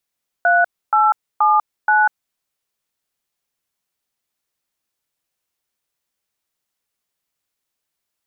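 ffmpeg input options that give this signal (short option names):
-f lavfi -i "aevalsrc='0.211*clip(min(mod(t,0.477),0.195-mod(t,0.477))/0.002,0,1)*(eq(floor(t/0.477),0)*(sin(2*PI*697*mod(t,0.477))+sin(2*PI*1477*mod(t,0.477)))+eq(floor(t/0.477),1)*(sin(2*PI*852*mod(t,0.477))+sin(2*PI*1336*mod(t,0.477)))+eq(floor(t/0.477),2)*(sin(2*PI*852*mod(t,0.477))+sin(2*PI*1209*mod(t,0.477)))+eq(floor(t/0.477),3)*(sin(2*PI*852*mod(t,0.477))+sin(2*PI*1477*mod(t,0.477))))':d=1.908:s=44100"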